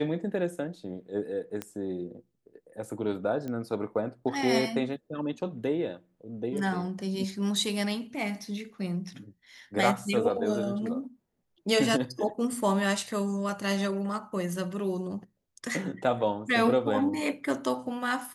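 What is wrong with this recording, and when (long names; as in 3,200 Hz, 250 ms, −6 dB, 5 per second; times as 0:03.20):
0:01.62: click −18 dBFS
0:03.48: click −24 dBFS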